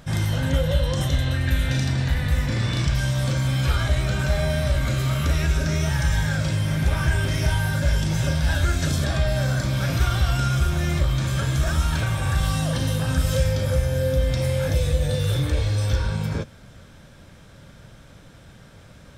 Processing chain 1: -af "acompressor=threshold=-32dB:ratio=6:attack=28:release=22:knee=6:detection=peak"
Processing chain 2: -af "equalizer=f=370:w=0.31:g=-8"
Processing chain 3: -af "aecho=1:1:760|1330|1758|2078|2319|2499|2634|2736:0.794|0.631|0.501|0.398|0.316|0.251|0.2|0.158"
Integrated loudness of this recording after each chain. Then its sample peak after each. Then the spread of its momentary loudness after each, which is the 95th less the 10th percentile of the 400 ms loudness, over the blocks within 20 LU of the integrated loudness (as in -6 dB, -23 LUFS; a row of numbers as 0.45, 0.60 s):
-30.0, -26.5, -19.0 LUFS; -16.5, -12.5, -3.0 dBFS; 17, 2, 5 LU